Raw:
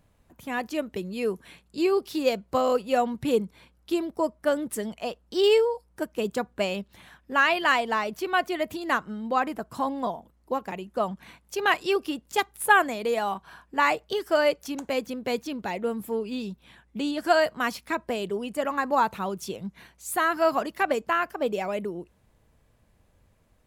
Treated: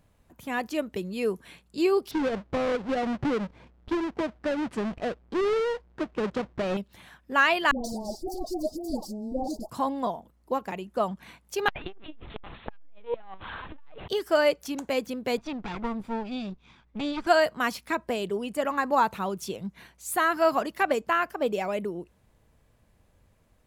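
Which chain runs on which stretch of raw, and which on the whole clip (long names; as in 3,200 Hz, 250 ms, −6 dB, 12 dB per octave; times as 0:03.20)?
0:02.11–0:06.77: each half-wave held at its own peak + downward compressor, threshold −23 dBFS + head-to-tape spacing loss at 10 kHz 25 dB
0:07.71–0:09.70: lower of the sound and its delayed copy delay 3.5 ms + Chebyshev band-stop filter 750–4,700 Hz, order 4 + all-pass dispersion highs, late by 133 ms, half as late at 1,000 Hz
0:11.68–0:14.08: converter with a step at zero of −34.5 dBFS + linear-prediction vocoder at 8 kHz pitch kept + saturating transformer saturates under 740 Hz
0:15.37–0:17.27: lower of the sound and its delayed copy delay 0.84 ms + high-frequency loss of the air 120 metres
whole clip: no processing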